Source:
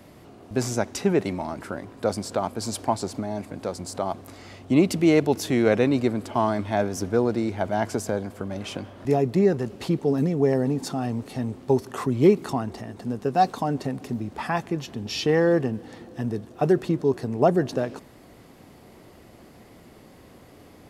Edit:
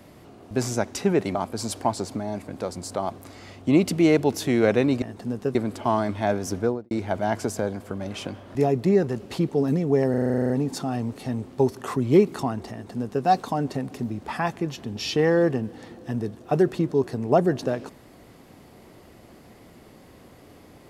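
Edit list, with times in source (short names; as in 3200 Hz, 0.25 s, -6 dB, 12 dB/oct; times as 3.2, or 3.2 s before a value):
1.35–2.38 cut
7.08–7.41 studio fade out
10.6 stutter 0.04 s, 11 plays
12.82–13.35 copy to 6.05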